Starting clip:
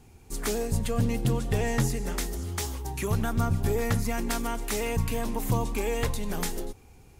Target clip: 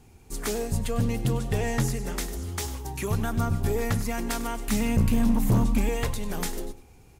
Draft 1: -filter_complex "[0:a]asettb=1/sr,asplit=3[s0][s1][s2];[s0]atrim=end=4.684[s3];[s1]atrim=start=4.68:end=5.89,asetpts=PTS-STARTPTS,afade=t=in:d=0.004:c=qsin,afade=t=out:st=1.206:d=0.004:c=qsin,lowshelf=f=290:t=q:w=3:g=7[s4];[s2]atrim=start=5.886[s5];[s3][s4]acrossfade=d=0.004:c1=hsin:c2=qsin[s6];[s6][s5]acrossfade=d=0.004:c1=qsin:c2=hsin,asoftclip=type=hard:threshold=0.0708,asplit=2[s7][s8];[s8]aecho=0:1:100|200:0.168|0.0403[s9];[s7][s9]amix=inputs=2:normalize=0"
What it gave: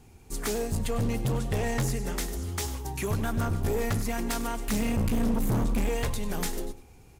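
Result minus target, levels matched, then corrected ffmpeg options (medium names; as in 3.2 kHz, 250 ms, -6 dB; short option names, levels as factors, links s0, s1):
hard clipper: distortion +7 dB
-filter_complex "[0:a]asettb=1/sr,asplit=3[s0][s1][s2];[s0]atrim=end=4.684[s3];[s1]atrim=start=4.68:end=5.89,asetpts=PTS-STARTPTS,afade=t=in:d=0.004:c=qsin,afade=t=out:st=1.206:d=0.004:c=qsin,lowshelf=f=290:t=q:w=3:g=7[s4];[s2]atrim=start=5.886[s5];[s3][s4]acrossfade=d=0.004:c1=hsin:c2=qsin[s6];[s6][s5]acrossfade=d=0.004:c1=qsin:c2=hsin,asoftclip=type=hard:threshold=0.158,asplit=2[s7][s8];[s8]aecho=0:1:100|200:0.168|0.0403[s9];[s7][s9]amix=inputs=2:normalize=0"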